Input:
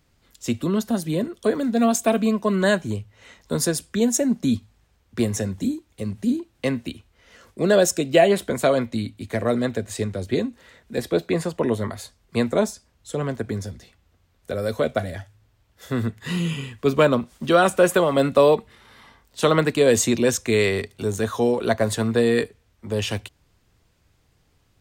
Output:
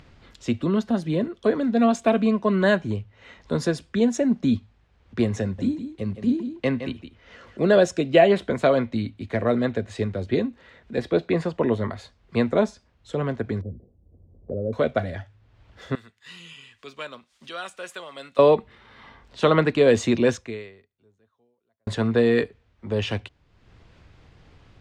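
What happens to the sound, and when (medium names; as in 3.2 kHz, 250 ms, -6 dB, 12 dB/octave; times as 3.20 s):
5.42–7.78 s: delay 165 ms -10 dB
13.61–14.73 s: inverse Chebyshev low-pass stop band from 3.1 kHz, stop band 80 dB
15.95–18.39 s: pre-emphasis filter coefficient 0.97
20.33–21.87 s: fade out exponential
whole clip: low-pass 3.5 kHz 12 dB/octave; upward compressor, threshold -40 dBFS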